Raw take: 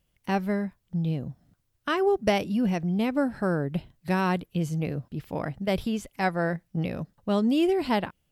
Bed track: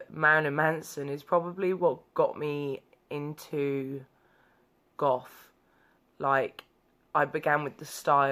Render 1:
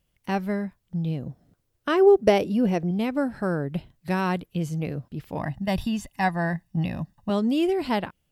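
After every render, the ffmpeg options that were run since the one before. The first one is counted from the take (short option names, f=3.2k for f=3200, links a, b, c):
-filter_complex "[0:a]asettb=1/sr,asplit=3[a][b][c];[a]atrim=end=1.264[d];[b]atrim=start=1.26:end=2.91,asetpts=PTS-STARTPTS,afade=t=in:d=0.004:c=qsin,afade=t=out:st=1.646:d=0.004:c=qsin,equalizer=f=440:w=1.2:g=8.5[e];[c]atrim=start=2.906[f];[d][e]acrossfade=d=0.004:c1=hsin:c2=qsin[g];[g][f]acrossfade=d=0.004:c1=qsin:c2=hsin,asettb=1/sr,asplit=3[h][i][j];[h]atrim=end=5.374[k];[i]atrim=start=5.37:end=7.3,asetpts=PTS-STARTPTS,afade=t=in:d=0.004:c=qsin,afade=t=out:st=1.926:d=0.004:c=qsin,aecho=1:1:1.1:0.74,atrim=end_sample=85113[l];[j]atrim=start=7.296[m];[k][l]acrossfade=d=0.004:c1=hsin:c2=qsin[n];[n][m]acrossfade=d=0.004:c1=qsin:c2=hsin"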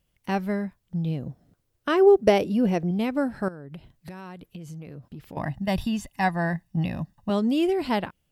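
-filter_complex "[0:a]asettb=1/sr,asplit=3[a][b][c];[a]atrim=end=3.484[d];[b]atrim=start=3.48:end=5.37,asetpts=PTS-STARTPTS,afade=t=in:d=0.004:c=qsin,afade=t=out:st=1.886:d=0.004:c=qsin,acompressor=threshold=-35dB:ratio=16:attack=3.2:release=140:knee=1:detection=peak[e];[c]atrim=start=5.366[f];[d][e]acrossfade=d=0.004:c1=hsin:c2=qsin[g];[g][f]acrossfade=d=0.004:c1=qsin:c2=hsin"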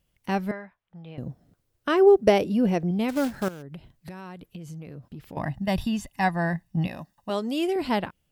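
-filter_complex "[0:a]asettb=1/sr,asplit=3[a][b][c];[a]atrim=end=0.514[d];[b]atrim=start=0.51:end=1.18,asetpts=PTS-STARTPTS,afade=t=in:d=0.004:c=qsin,afade=t=out:st=0.666:d=0.004:c=qsin,acrossover=split=580 3000:gain=0.141 1 0.0794[e][f][g];[e][f][g]amix=inputs=3:normalize=0[h];[c]atrim=start=1.176[i];[d][h]acrossfade=d=0.004:c1=hsin:c2=qsin[j];[j][i]acrossfade=d=0.004:c1=qsin:c2=hsin,asplit=3[k][l][m];[k]afade=t=out:st=3.08:d=0.02[n];[l]acrusher=bits=3:mode=log:mix=0:aa=0.000001,afade=t=in:st=3.08:d=0.02,afade=t=out:st=3.61:d=0.02[o];[m]afade=t=in:st=3.61:d=0.02[p];[n][o][p]amix=inputs=3:normalize=0,asettb=1/sr,asplit=3[q][r][s];[q]atrim=end=6.874[t];[r]atrim=start=6.87:end=7.76,asetpts=PTS-STARTPTS,afade=t=in:d=0.004:c=qsin,afade=t=out:st=0.886:d=0.004:c=qsin,bass=f=250:g=-13,treble=f=4k:g=3[u];[s]atrim=start=7.756[v];[t][u]acrossfade=d=0.004:c1=hsin:c2=qsin[w];[w][v]acrossfade=d=0.004:c1=qsin:c2=hsin"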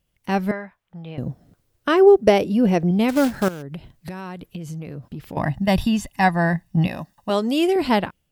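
-af "dynaudnorm=f=130:g=5:m=7dB"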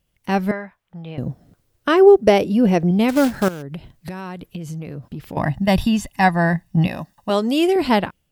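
-af "volume=2dB,alimiter=limit=-1dB:level=0:latency=1"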